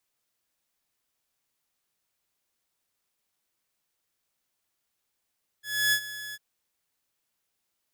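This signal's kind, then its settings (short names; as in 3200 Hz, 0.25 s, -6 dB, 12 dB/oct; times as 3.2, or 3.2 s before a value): ADSR saw 1700 Hz, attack 0.294 s, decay 74 ms, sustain -16 dB, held 0.71 s, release 40 ms -17.5 dBFS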